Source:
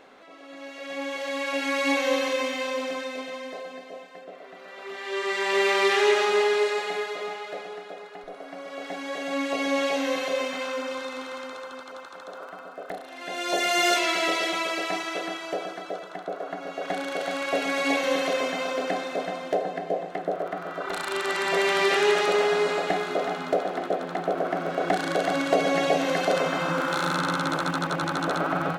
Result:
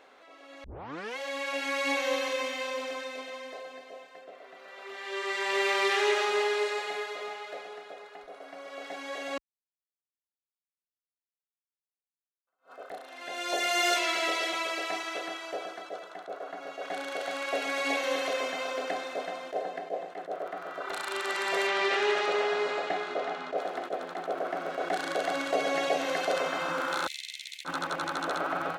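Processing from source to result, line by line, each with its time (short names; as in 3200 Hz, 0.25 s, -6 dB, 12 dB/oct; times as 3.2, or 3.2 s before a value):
0.64 tape start 0.54 s
9.38–12.47 mute
21.67–23.58 Bessel low-pass 4900 Hz
27.07–27.65 steep high-pass 2000 Hz 96 dB/oct
whole clip: HPF 42 Hz; bell 160 Hz -12 dB 1.6 oct; attack slew limiter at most 290 dB/s; gain -3.5 dB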